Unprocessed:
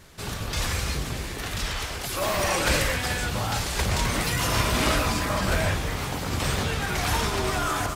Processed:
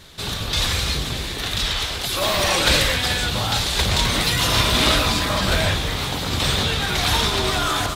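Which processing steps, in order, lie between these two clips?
parametric band 3,700 Hz +11 dB 0.58 octaves
level +3.5 dB

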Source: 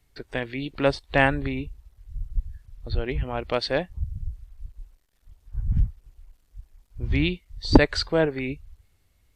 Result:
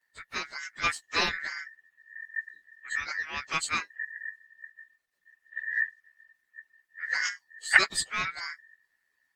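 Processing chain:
partials spread apart or drawn together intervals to 111%
ring modulation 1,800 Hz
dynamic equaliser 6,300 Hz, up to +6 dB, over −48 dBFS, Q 1
harmonic and percussive parts rebalanced percussive +9 dB
level −8 dB

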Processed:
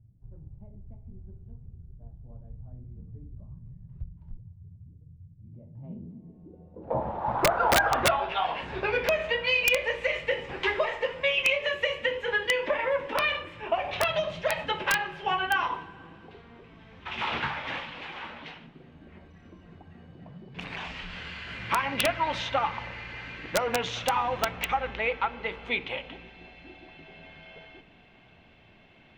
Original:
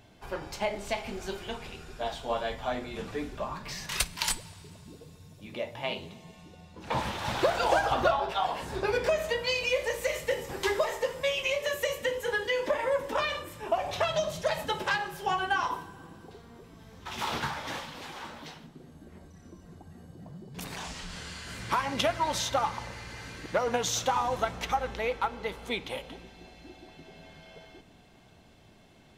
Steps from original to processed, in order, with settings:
low-pass filter sweep 110 Hz → 2,600 Hz, 0:05.40–0:08.25
mains-hum notches 50/100/150/200/250/300/350/400/450 Hz
wrap-around overflow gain 13.5 dB

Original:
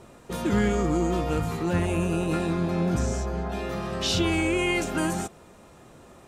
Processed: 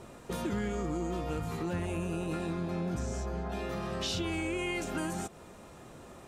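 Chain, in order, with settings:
downward compressor 3 to 1, threshold −34 dBFS, peak gain reduction 11 dB

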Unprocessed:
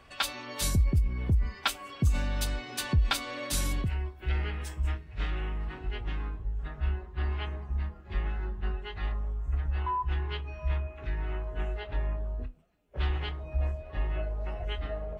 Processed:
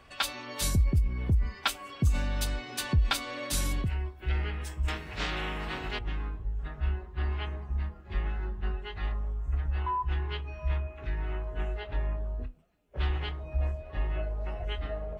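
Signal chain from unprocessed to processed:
0:04.88–0:05.99: every bin compressed towards the loudest bin 2 to 1

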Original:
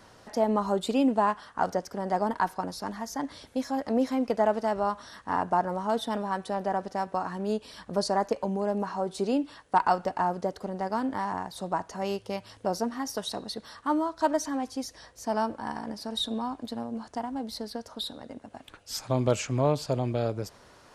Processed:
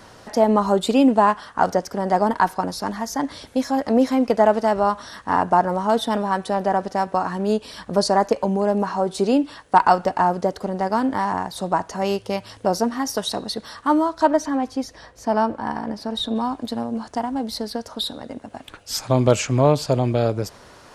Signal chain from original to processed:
0:14.23–0:16.36: high-shelf EQ 4,500 Hz −11.5 dB
level +8.5 dB

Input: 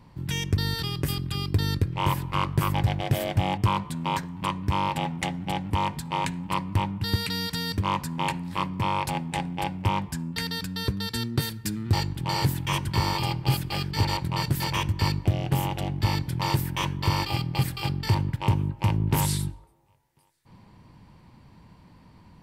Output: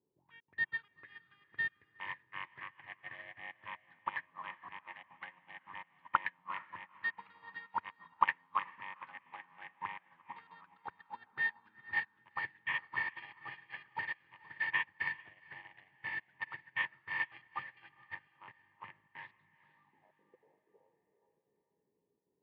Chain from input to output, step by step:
inverse Chebyshev low-pass filter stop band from 7,900 Hz, stop band 50 dB
parametric band 1,400 Hz −13 dB 0.24 octaves
echo through a band-pass that steps 403 ms, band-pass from 160 Hz, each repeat 0.7 octaves, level −2.5 dB
gate pattern "xxxxx.xx.xx.x" 188 BPM
envelope filter 370–1,800 Hz, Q 12, up, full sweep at −24.5 dBFS
feedback delay with all-pass diffusion 451 ms, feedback 44%, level −7 dB
expander for the loud parts 2.5 to 1, over −57 dBFS
level +16 dB

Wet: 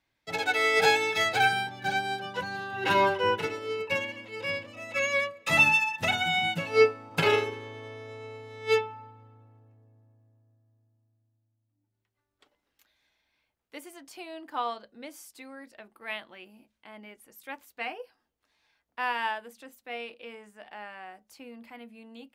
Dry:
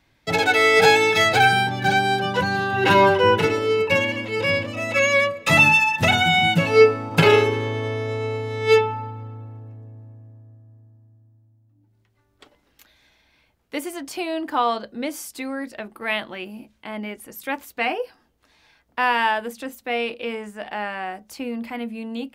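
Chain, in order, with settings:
low-shelf EQ 340 Hz −7 dB
expander for the loud parts 1.5 to 1, over −28 dBFS
level −4.5 dB

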